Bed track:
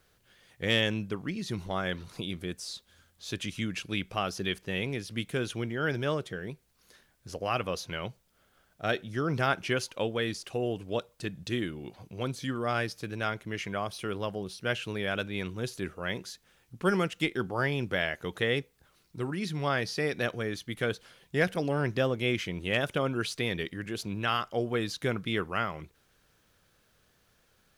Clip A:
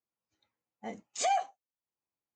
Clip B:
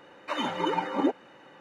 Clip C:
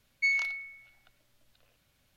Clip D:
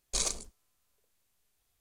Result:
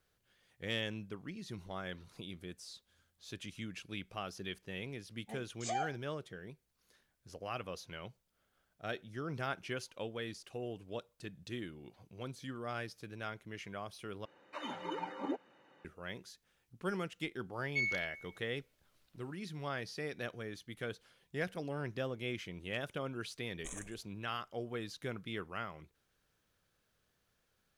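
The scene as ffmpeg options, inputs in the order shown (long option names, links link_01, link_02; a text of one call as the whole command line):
ffmpeg -i bed.wav -i cue0.wav -i cue1.wav -i cue2.wav -i cue3.wav -filter_complex "[0:a]volume=-11dB[link_01];[1:a]asplit=2[link_02][link_03];[link_03]adelay=18,volume=-7.5dB[link_04];[link_02][link_04]amix=inputs=2:normalize=0[link_05];[4:a]asuperstop=centerf=4600:order=4:qfactor=1.3[link_06];[link_01]asplit=2[link_07][link_08];[link_07]atrim=end=14.254[link_09];[2:a]atrim=end=1.6,asetpts=PTS-STARTPTS,volume=-12.5dB[link_10];[link_08]atrim=start=15.846[link_11];[link_05]atrim=end=2.35,asetpts=PTS-STARTPTS,volume=-9dB,afade=type=in:duration=0.004:curve=hsin,afade=type=out:start_time=2.346:duration=0.004:curve=hsin,adelay=196245S[link_12];[3:a]atrim=end=2.16,asetpts=PTS-STARTPTS,volume=-7.5dB,afade=type=in:duration=0.004:curve=hsin,afade=type=out:start_time=2.156:duration=0.004:curve=hsin,adelay=17530[link_13];[link_06]atrim=end=1.8,asetpts=PTS-STARTPTS,volume=-13.5dB,afade=type=in:duration=0.004:curve=hsin,afade=type=out:start_time=1.796:duration=0.004:curve=hsin,adelay=23510[link_14];[link_09][link_10]acrossfade=duration=0.004:curve1=hsin:curve2=hsin[link_15];[link_15][link_11]acrossfade=duration=0.004:curve1=hsin:curve2=hsin[link_16];[link_16][link_12][link_13][link_14]amix=inputs=4:normalize=0" out.wav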